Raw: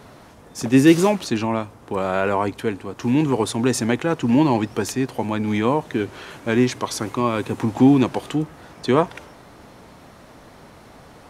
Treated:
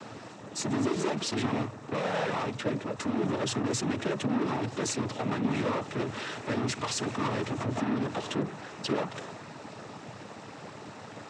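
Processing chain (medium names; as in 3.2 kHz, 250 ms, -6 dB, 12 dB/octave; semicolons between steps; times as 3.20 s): compression 5:1, threshold -18 dBFS, peak gain reduction 10 dB; valve stage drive 31 dB, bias 0.45; noise-vocoded speech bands 12; trim +4 dB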